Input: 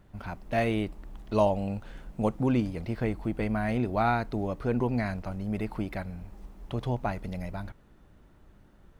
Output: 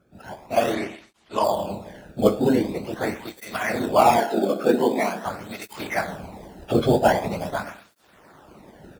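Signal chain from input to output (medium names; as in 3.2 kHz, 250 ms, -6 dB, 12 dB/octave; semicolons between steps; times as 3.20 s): phase randomisation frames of 50 ms; Schroeder reverb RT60 0.86 s, combs from 27 ms, DRR 6 dB; in parallel at -5 dB: sample-rate reducer 4 kHz, jitter 0%; on the sum: level rider gain up to 16 dB; 4.18–5.25 s: steep high-pass 170 Hz 48 dB/octave; harmonic-percussive split percussive +9 dB; 0.74–1.44 s: low-pass 7.9 kHz 12 dB/octave; cancelling through-zero flanger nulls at 0.44 Hz, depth 1.1 ms; trim -7 dB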